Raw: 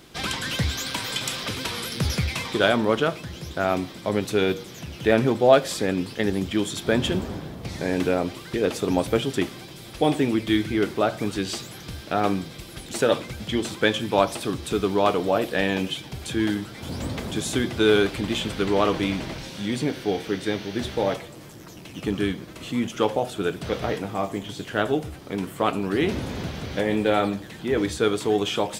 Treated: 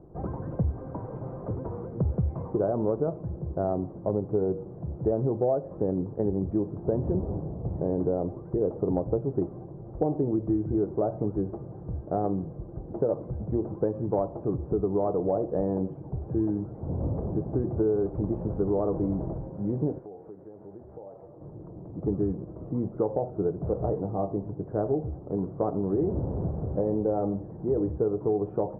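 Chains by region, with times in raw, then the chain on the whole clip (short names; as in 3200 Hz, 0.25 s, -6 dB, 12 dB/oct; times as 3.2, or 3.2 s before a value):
19.98–21.41 low shelf 370 Hz -12 dB + compressor 16:1, threshold -38 dBFS
whole clip: Bessel low-pass 520 Hz, order 6; bell 240 Hz -9 dB 0.49 oct; compressor 6:1, threshold -26 dBFS; gain +4 dB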